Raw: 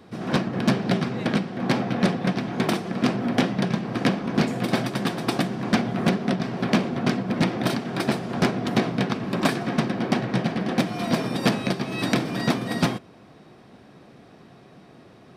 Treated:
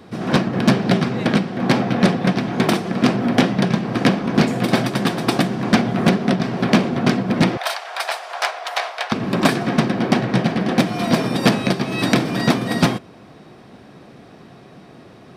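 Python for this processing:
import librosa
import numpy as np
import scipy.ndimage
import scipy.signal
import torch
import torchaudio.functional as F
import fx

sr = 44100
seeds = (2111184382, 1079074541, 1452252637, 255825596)

y = fx.steep_highpass(x, sr, hz=640.0, slope=36, at=(7.57, 9.12))
y = fx.quant_float(y, sr, bits=8)
y = y * librosa.db_to_amplitude(6.0)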